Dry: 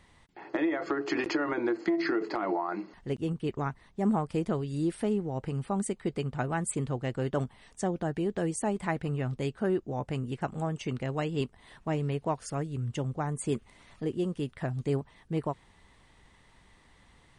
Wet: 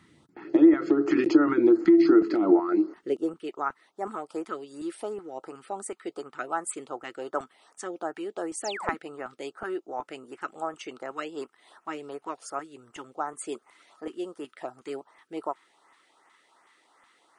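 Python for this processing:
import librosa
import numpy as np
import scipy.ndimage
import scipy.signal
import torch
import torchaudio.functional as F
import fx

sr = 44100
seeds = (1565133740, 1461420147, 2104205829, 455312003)

y = fx.filter_sweep_highpass(x, sr, from_hz=130.0, to_hz=770.0, start_s=2.07, end_s=3.53, q=1.5)
y = fx.small_body(y, sr, hz=(320.0, 1300.0), ring_ms=25, db=12)
y = fx.filter_lfo_notch(y, sr, shape='saw_up', hz=2.7, low_hz=450.0, high_hz=4500.0, q=0.88)
y = fx.spec_paint(y, sr, seeds[0], shape='fall', start_s=8.64, length_s=0.31, low_hz=210.0, high_hz=8000.0, level_db=-37.0)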